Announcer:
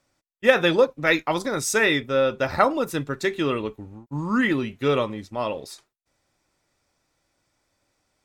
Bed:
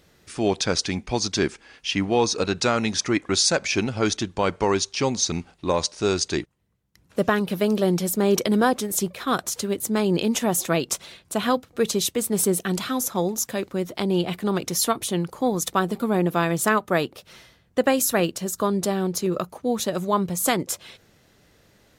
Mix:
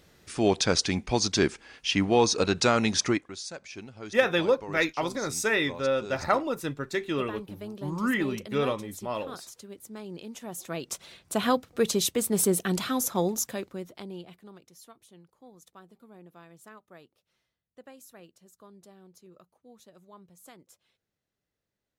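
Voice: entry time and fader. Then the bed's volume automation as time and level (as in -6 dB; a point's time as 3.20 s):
3.70 s, -5.5 dB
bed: 3.10 s -1 dB
3.33 s -19 dB
10.36 s -19 dB
11.31 s -2.5 dB
13.35 s -2.5 dB
14.71 s -29.5 dB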